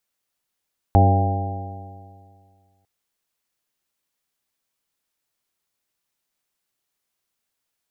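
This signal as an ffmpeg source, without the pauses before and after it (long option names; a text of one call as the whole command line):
ffmpeg -f lavfi -i "aevalsrc='0.282*pow(10,-3*t/2.06)*sin(2*PI*94.09*t)+0.0841*pow(10,-3*t/2.06)*sin(2*PI*188.75*t)+0.0794*pow(10,-3*t/2.06)*sin(2*PI*284.53*t)+0.0531*pow(10,-3*t/2.06)*sin(2*PI*381.97*t)+0.0473*pow(10,-3*t/2.06)*sin(2*PI*481.61*t)+0.0501*pow(10,-3*t/2.06)*sin(2*PI*583.95*t)+0.1*pow(10,-3*t/2.06)*sin(2*PI*689.49*t)+0.158*pow(10,-3*t/2.06)*sin(2*PI*798.68*t)':duration=1.9:sample_rate=44100" out.wav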